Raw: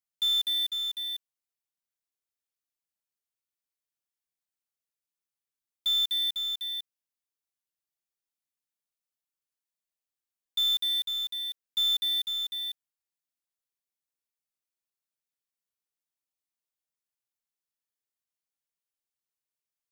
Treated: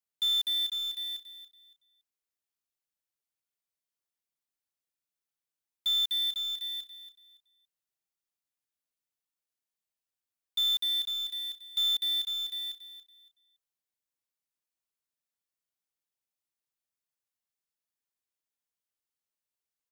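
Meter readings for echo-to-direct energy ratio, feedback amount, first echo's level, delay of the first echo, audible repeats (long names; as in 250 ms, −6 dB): −11.5 dB, 24%, −12.0 dB, 282 ms, 2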